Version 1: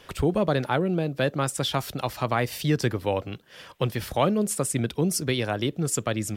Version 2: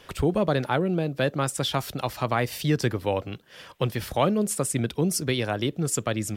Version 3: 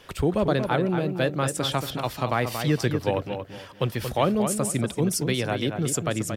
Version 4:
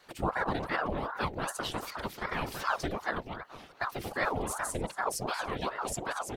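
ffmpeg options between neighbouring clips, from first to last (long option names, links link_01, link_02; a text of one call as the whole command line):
ffmpeg -i in.wav -af anull out.wav
ffmpeg -i in.wav -filter_complex "[0:a]asplit=2[link_01][link_02];[link_02]adelay=230,lowpass=frequency=3400:poles=1,volume=-7dB,asplit=2[link_03][link_04];[link_04]adelay=230,lowpass=frequency=3400:poles=1,volume=0.28,asplit=2[link_05][link_06];[link_06]adelay=230,lowpass=frequency=3400:poles=1,volume=0.28[link_07];[link_01][link_03][link_05][link_07]amix=inputs=4:normalize=0" out.wav
ffmpeg -i in.wav -af "asuperstop=centerf=1300:order=4:qfactor=4.8,afftfilt=real='hypot(re,im)*cos(2*PI*random(0))':imag='hypot(re,im)*sin(2*PI*random(1))':win_size=512:overlap=0.75,aeval=exprs='val(0)*sin(2*PI*710*n/s+710*0.75/2.6*sin(2*PI*2.6*n/s))':channel_layout=same" out.wav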